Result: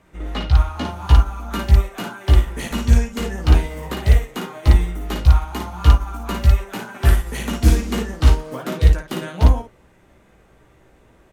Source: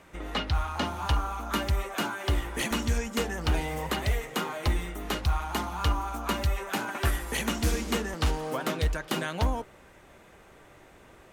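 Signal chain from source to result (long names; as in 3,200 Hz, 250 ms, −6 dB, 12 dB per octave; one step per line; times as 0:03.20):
low-shelf EQ 350 Hz +8.5 dB
ambience of single reflections 16 ms −5.5 dB, 56 ms −3.5 dB
expander for the loud parts 1.5 to 1, over −31 dBFS
level +5 dB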